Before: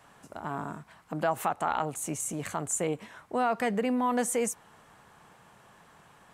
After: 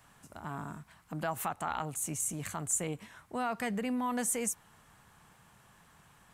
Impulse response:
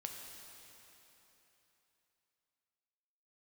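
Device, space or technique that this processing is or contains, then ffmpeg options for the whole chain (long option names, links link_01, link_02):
smiley-face EQ: -af "lowshelf=frequency=120:gain=8,equalizer=frequency=500:width_type=o:width=1.8:gain=-6,highshelf=frequency=8500:gain=8,volume=-3.5dB"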